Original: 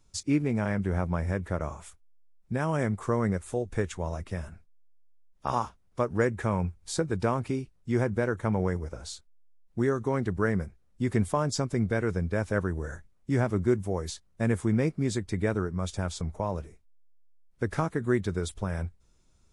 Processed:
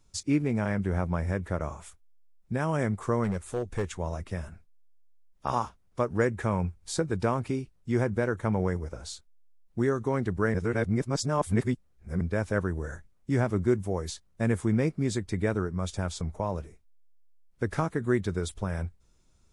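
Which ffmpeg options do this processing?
ffmpeg -i in.wav -filter_complex "[0:a]asplit=3[link_01][link_02][link_03];[link_01]afade=type=out:start_time=3.23:duration=0.02[link_04];[link_02]asoftclip=type=hard:threshold=-23.5dB,afade=type=in:start_time=3.23:duration=0.02,afade=type=out:start_time=3.96:duration=0.02[link_05];[link_03]afade=type=in:start_time=3.96:duration=0.02[link_06];[link_04][link_05][link_06]amix=inputs=3:normalize=0,asplit=3[link_07][link_08][link_09];[link_07]atrim=end=10.542[link_10];[link_08]atrim=start=10.538:end=12.212,asetpts=PTS-STARTPTS,areverse[link_11];[link_09]atrim=start=12.208[link_12];[link_10][link_11]acrossfade=duration=0.004:curve1=hsin:curve2=hsin[link_13];[link_13][link_12]acrossfade=duration=0.004:curve1=hsin:curve2=hsin" out.wav

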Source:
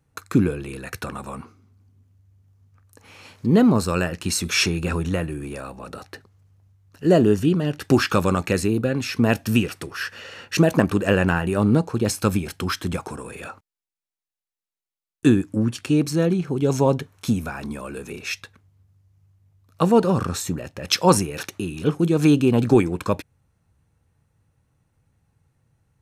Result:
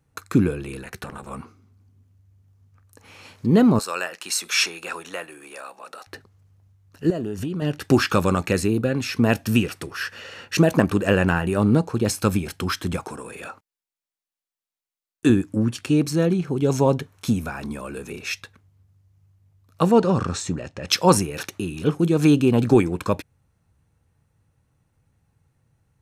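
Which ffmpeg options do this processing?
ffmpeg -i in.wav -filter_complex "[0:a]asettb=1/sr,asplit=3[link_01][link_02][link_03];[link_01]atrim=end=0.834[link_04];[link_02]atrim=start=0.83:end=1.31,asetpts=PTS-STARTPTS,afade=type=in:duration=0.004:curve=qsin,afade=type=out:start_time=0.476:duration=0.004:curve=qsin,tremolo=f=290:d=0.947[link_05];[link_03]atrim=start=1.306[link_06];[link_04][link_05]acrossfade=duration=0.004:curve1=hsin:curve2=qsin[link_07];[link_07][link_06]acrossfade=duration=0.004:curve1=qsin:curve2=hsin,asettb=1/sr,asplit=3[link_08][link_09][link_10];[link_08]atrim=end=3.794[link_11];[link_09]atrim=start=3.79:end=6.07,asetpts=PTS-STARTPTS,afade=type=in:duration=0.004:curve=qsin,afade=type=out:start_time=2.276:duration=0.004:curve=qsin,highpass=690[link_12];[link_10]atrim=start=6.066[link_13];[link_11][link_12]acrossfade=duration=0.004:curve1=hsin:curve2=qsin[link_14];[link_14][link_13]acrossfade=duration=0.004:curve1=qsin:curve2=hsin,asettb=1/sr,asplit=3[link_15][link_16][link_17];[link_15]atrim=end=7.104[link_18];[link_16]atrim=start=7.1:end=7.62,asetpts=PTS-STARTPTS,afade=type=in:duration=0.004:curve=qsin,afade=type=out:start_time=0.516:duration=0.004:curve=qsin,acompressor=threshold=-23dB:ratio=16:attack=3.2:release=140:knee=1:detection=peak[link_19];[link_17]atrim=start=7.616[link_20];[link_18][link_19]acrossfade=duration=0.004:curve1=hsin:curve2=qsin[link_21];[link_21][link_20]acrossfade=duration=0.004:curve1=qsin:curve2=hsin,asettb=1/sr,asplit=3[link_22][link_23][link_24];[link_22]atrim=end=13.044[link_25];[link_23]atrim=start=13.04:end=15.3,asetpts=PTS-STARTPTS,afade=type=in:duration=0.004:curve=qsin,afade=type=out:start_time=2.256:duration=0.004:curve=qsin,lowshelf=frequency=110:gain=-11.5[link_26];[link_24]atrim=start=15.296[link_27];[link_25][link_26]acrossfade=duration=0.004:curve1=hsin:curve2=qsin[link_28];[link_28][link_27]acrossfade=duration=0.004:curve1=qsin:curve2=hsin,asettb=1/sr,asplit=3[link_29][link_30][link_31];[link_29]atrim=end=19.914[link_32];[link_30]atrim=start=19.91:end=20.89,asetpts=PTS-STARTPTS,afade=type=in:duration=0.004:curve=qsin,afade=type=out:start_time=0.976:duration=0.004:curve=qsin,lowpass=frequency=8100:width=0.5412,lowpass=frequency=8100:width=1.3066[link_33];[link_31]atrim=start=20.886[link_34];[link_32][link_33]acrossfade=duration=0.004:curve1=hsin:curve2=qsin[link_35];[link_35][link_34]acrossfade=duration=0.004:curve1=qsin:curve2=hsin" out.wav

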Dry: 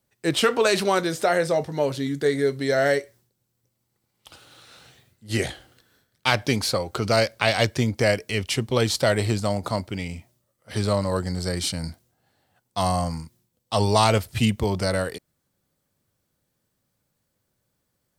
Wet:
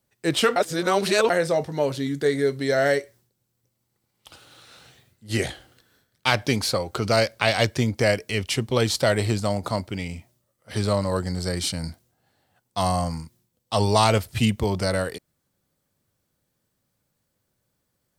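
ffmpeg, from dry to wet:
ffmpeg -i in.wav -filter_complex "[0:a]asplit=3[link_01][link_02][link_03];[link_01]atrim=end=0.562[link_04];[link_02]atrim=start=0.558:end=1.302,asetpts=PTS-STARTPTS,areverse[link_05];[link_03]atrim=start=1.298[link_06];[link_04][link_05]acrossfade=duration=0.004:curve1=hsin:curve2=hsin[link_07];[link_07][link_06]acrossfade=duration=0.004:curve1=hsin:curve2=hsin" out.wav

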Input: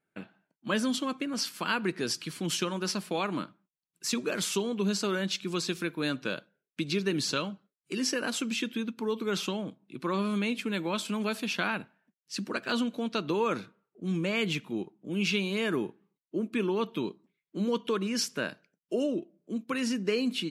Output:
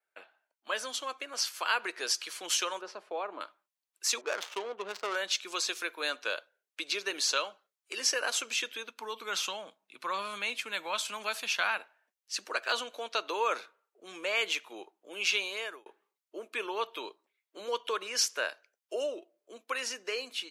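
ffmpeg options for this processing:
ffmpeg -i in.wav -filter_complex "[0:a]asettb=1/sr,asplit=3[link_01][link_02][link_03];[link_01]atrim=end=2.814[link_04];[link_02]atrim=start=2.81:end=3.41,asetpts=PTS-STARTPTS,afade=type=in:duration=0.004:curve=qsin,afade=type=out:start_time=0.596:duration=0.004:curve=qsin,bandpass=frequency=310:width_type=q:width=0.61[link_05];[link_03]atrim=start=3.406[link_06];[link_04][link_05]acrossfade=duration=0.004:curve1=hsin:curve2=qsin[link_07];[link_07][link_06]acrossfade=duration=0.004:curve1=qsin:curve2=hsin,asettb=1/sr,asplit=3[link_08][link_09][link_10];[link_08]atrim=end=4.214[link_11];[link_09]atrim=start=4.21:end=5.16,asetpts=PTS-STARTPTS,afade=type=in:duration=0.004:curve=qsin,afade=type=out:start_time=0.946:duration=0.004:curve=qsin,adynamicsmooth=sensitivity=4.5:basefreq=520[link_12];[link_10]atrim=start=5.156[link_13];[link_11][link_12]acrossfade=duration=0.004:curve1=hsin:curve2=qsin[link_14];[link_14][link_13]acrossfade=duration=0.004:curve1=qsin:curve2=hsin,asplit=3[link_15][link_16][link_17];[link_15]afade=type=out:start_time=8.96:duration=0.02[link_18];[link_16]asubboost=boost=12:cutoff=110,afade=type=in:start_time=8.96:duration=0.02,afade=type=out:start_time=11.77:duration=0.02[link_19];[link_17]afade=type=in:start_time=11.77:duration=0.02[link_20];[link_18][link_19][link_20]amix=inputs=3:normalize=0,asplit=2[link_21][link_22];[link_21]atrim=end=15.86,asetpts=PTS-STARTPTS,afade=type=out:start_time=15.42:duration=0.44[link_23];[link_22]atrim=start=15.86,asetpts=PTS-STARTPTS,afade=type=in:duration=0.004:curve=hsin[link_24];[link_23][link_24]concat=n=2:v=0:a=1,highpass=frequency=530:width=0.5412,highpass=frequency=530:width=1.3066,dynaudnorm=framelen=980:gausssize=3:maxgain=4dB,adynamicequalizer=threshold=0.00316:dfrequency=6300:dqfactor=5.1:tfrequency=6300:tqfactor=5.1:attack=5:release=100:ratio=0.375:range=2.5:mode=boostabove:tftype=bell,volume=-2dB" out.wav

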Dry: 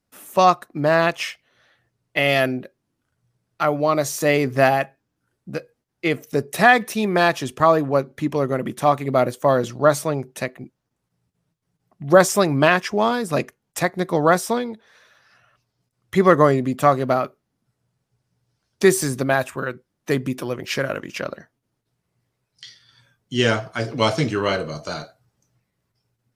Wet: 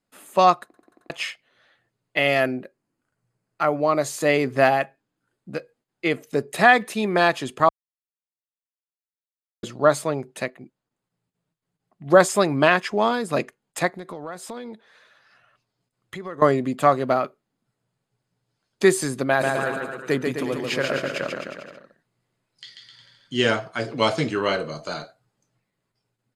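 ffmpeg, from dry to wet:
ffmpeg -i in.wav -filter_complex "[0:a]asettb=1/sr,asplit=3[link_01][link_02][link_03];[link_01]atrim=end=2.284[link_04];[link_02]atrim=start=2.28:end=4.02,asetpts=PTS-STARTPTS,afade=type=in:duration=0.004:curve=qsin,afade=type=out:start_time=1.736:duration=0.004:curve=qsin,equalizer=frequency=3500:width=2.9:gain=-8[link_05];[link_03]atrim=start=4.016[link_06];[link_04][link_05]acrossfade=duration=0.004:curve1=hsin:curve2=qsin[link_07];[link_07][link_06]acrossfade=duration=0.004:curve1=qsin:curve2=hsin,asettb=1/sr,asplit=3[link_08][link_09][link_10];[link_08]atrim=end=13.904[link_11];[link_09]atrim=start=13.9:end=16.42,asetpts=PTS-STARTPTS,afade=type=in:duration=0.004:curve=qsin,afade=type=out:start_time=2.516:duration=0.004:curve=qsin,acompressor=threshold=-30dB:ratio=6:attack=3.2:release=140:knee=1:detection=peak[link_12];[link_10]atrim=start=16.416[link_13];[link_11][link_12]acrossfade=duration=0.004:curve1=hsin:curve2=qsin[link_14];[link_14][link_13]acrossfade=duration=0.004:curve1=qsin:curve2=hsin,asplit=3[link_15][link_16][link_17];[link_15]afade=type=out:start_time=19.4:duration=0.02[link_18];[link_16]aecho=1:1:140|259|360.2|446.1|519.2|581.3:0.631|0.398|0.251|0.158|0.1|0.0631,afade=type=in:start_time=19.4:duration=0.02,afade=type=out:start_time=23.49:duration=0.02[link_19];[link_17]afade=type=in:start_time=23.49:duration=0.02[link_20];[link_18][link_19][link_20]amix=inputs=3:normalize=0,asplit=10[link_21][link_22][link_23][link_24][link_25][link_26][link_27][link_28][link_29][link_30];[link_21]atrim=end=0.742[link_31];[link_22]atrim=start=0.648:end=0.742[link_32];[link_23]atrim=start=0.648:end=0.742[link_33];[link_24]atrim=start=0.648:end=0.742[link_34];[link_25]atrim=start=0.648:end=0.742[link_35];[link_26]atrim=start=1.098:end=7.69,asetpts=PTS-STARTPTS,afade=type=out:start_time=6.588:duration=0.004:curve=hsin[link_36];[link_27]atrim=start=7.69:end=9.63,asetpts=PTS-STARTPTS,volume=0[link_37];[link_28]atrim=start=9.63:end=10.502,asetpts=PTS-STARTPTS,afade=type=in:duration=0.004:curve=hsin[link_38];[link_29]atrim=start=10.498:end=12.062,asetpts=PTS-STARTPTS,volume=-3dB[link_39];[link_30]atrim=start=12.058[link_40];[link_31][link_32]acrossfade=duration=0.004:curve1=hsin:curve2=hsin[link_41];[link_41][link_33]acrossfade=duration=0.004:curve1=hsin:curve2=hsin[link_42];[link_42][link_34]acrossfade=duration=0.004:curve1=hsin:curve2=hsin[link_43];[link_43][link_35]acrossfade=duration=0.004:curve1=hsin:curve2=hsin[link_44];[link_36][link_37][link_38]concat=n=3:v=0:a=1[link_45];[link_44][link_45]acrossfade=duration=0.004:curve1=hsin:curve2=hsin[link_46];[link_46][link_39]acrossfade=duration=0.004:curve1=hsin:curve2=hsin[link_47];[link_47][link_40]acrossfade=duration=0.004:curve1=hsin:curve2=hsin,lowpass=9700,equalizer=frequency=68:width=0.91:gain=-12.5,bandreject=frequency=5700:width=5.6,volume=-1dB" out.wav

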